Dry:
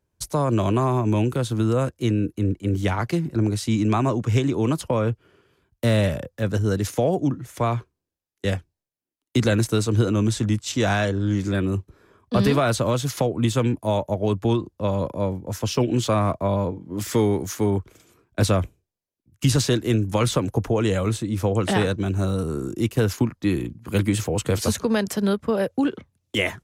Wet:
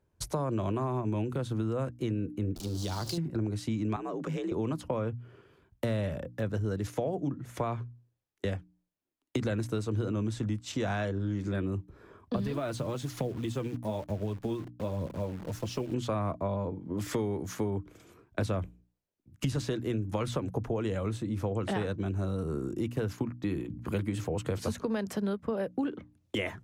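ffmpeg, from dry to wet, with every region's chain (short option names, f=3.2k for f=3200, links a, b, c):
-filter_complex "[0:a]asettb=1/sr,asplit=3[a][b][c];[a]atrim=end=2.564[d];[b]atrim=start=2.56:end=3.18,asetpts=PTS-STARTPTS,afade=t=in:d=0.004:c=qsin,afade=t=out:st=0.616:d=0.004:c=qsin,aeval=exprs='val(0)+0.5*0.0316*sgn(val(0))':c=same,highshelf=f=3.1k:t=q:w=3:g=13.5,acompressor=threshold=-26dB:ratio=4:attack=3.2:release=140:knee=1:detection=peak[e];[c]atrim=start=3.176[f];[d][e]acrossfade=d=0.004:c1=hsin:c2=qsin[g];[g][f]acrossfade=d=0.004:c1=qsin:c2=hsin,asettb=1/sr,asplit=3[h][i][j];[h]atrim=end=3.964[k];[i]atrim=start=3.96:end=4.52,asetpts=PTS-STARTPTS,afade=t=in:d=0.004:c=qsin,afade=t=out:st=0.556:d=0.004:c=qsin,equalizer=f=130:w=2.6:g=-11,afreqshift=51,acompressor=threshold=-29dB:ratio=3:attack=3.2:release=140:knee=1:detection=peak[l];[j]atrim=start=4.516[m];[k][l]acrossfade=d=0.004:c1=hsin:c2=qsin[n];[n][m]acrossfade=d=0.004:c1=qsin:c2=hsin,asettb=1/sr,asplit=3[o][p][q];[o]atrim=end=12.364[r];[p]atrim=start=12.36:end=15.94,asetpts=PTS-STARTPTS,afade=t=in:d=0.004:c=qsin,afade=t=out:st=3.576:d=0.004:c=qsin,equalizer=f=1.1k:t=o:w=2.2:g=-4.5,flanger=delay=0.2:depth=6.5:regen=46:speed=1.1:shape=sinusoidal,acrusher=bits=8:dc=4:mix=0:aa=0.000001[s];[q]atrim=start=15.936[t];[r][s]acrossfade=d=0.004:c1=hsin:c2=qsin[u];[u][t]acrossfade=d=0.004:c1=qsin:c2=hsin,highshelf=f=3.1k:g=-9.5,bandreject=f=60:t=h:w=6,bandreject=f=120:t=h:w=6,bandreject=f=180:t=h:w=6,bandreject=f=240:t=h:w=6,bandreject=f=300:t=h:w=6,acompressor=threshold=-35dB:ratio=3,volume=2.5dB"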